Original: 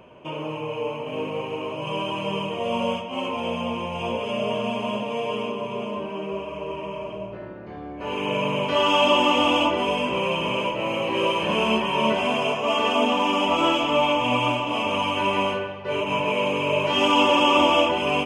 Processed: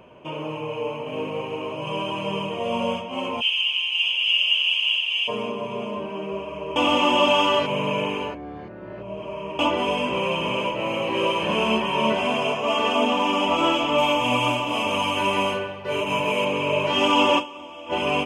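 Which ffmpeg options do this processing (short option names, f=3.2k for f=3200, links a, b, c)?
-filter_complex "[0:a]asplit=3[a][b][c];[a]afade=t=out:st=3.4:d=0.02[d];[b]highpass=f=2.9k:t=q:w=10,afade=t=in:st=3.4:d=0.02,afade=t=out:st=5.27:d=0.02[e];[c]afade=t=in:st=5.27:d=0.02[f];[d][e][f]amix=inputs=3:normalize=0,asettb=1/sr,asplit=3[g][h][i];[g]atrim=end=13.984[j];[h]atrim=start=13.98:end=16.45,asetpts=PTS-STARTPTS,afade=t=in:d=0.004:c=qsin,afade=t=out:st=2.466:d=0.004:c=qsin,highshelf=f=6.9k:g=12[k];[i]atrim=start=16.446[l];[j][k]acrossfade=d=0.004:c1=hsin:c2=qsin[m];[m][l]acrossfade=d=0.004:c1=qsin:c2=hsin,asplit=5[n][o][p][q][r];[n]atrim=end=6.762[s];[o]atrim=start=6.758:end=9.592,asetpts=PTS-STARTPTS,areverse[t];[p]atrim=start=9.588:end=17.64,asetpts=PTS-STARTPTS,afade=t=out:st=7.792:d=0.26:c=exp:silence=0.0841395[u];[q]atrim=start=17.64:end=17.67,asetpts=PTS-STARTPTS,volume=-21.5dB[v];[r]atrim=start=17.67,asetpts=PTS-STARTPTS,afade=t=in:d=0.26:c=exp:silence=0.0841395[w];[s][t]acrossfade=d=0.004:c1=hsin:c2=hsin[x];[u][v][w]concat=n=3:v=0:a=1[y];[x][y]acrossfade=d=0.004:c1=hsin:c2=hsin"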